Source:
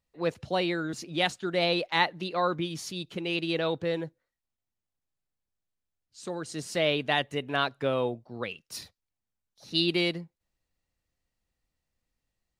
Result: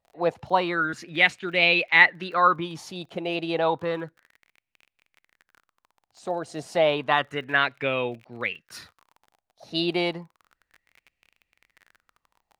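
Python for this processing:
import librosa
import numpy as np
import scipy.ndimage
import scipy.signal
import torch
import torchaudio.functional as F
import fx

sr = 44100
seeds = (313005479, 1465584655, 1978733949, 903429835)

y = fx.dmg_crackle(x, sr, seeds[0], per_s=30.0, level_db=-41.0)
y = fx.bass_treble(y, sr, bass_db=-1, treble_db=-5)
y = fx.bell_lfo(y, sr, hz=0.31, low_hz=690.0, high_hz=2500.0, db=16)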